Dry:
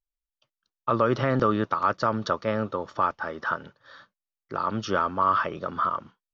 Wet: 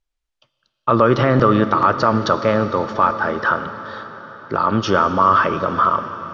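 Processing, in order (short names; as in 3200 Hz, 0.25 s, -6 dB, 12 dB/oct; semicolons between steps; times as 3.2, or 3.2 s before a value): in parallel at +2 dB: limiter -20.5 dBFS, peak gain reduction 10 dB; on the sum: air absorption 67 m; plate-style reverb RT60 4.9 s, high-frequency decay 0.95×, DRR 9.5 dB; gain +5 dB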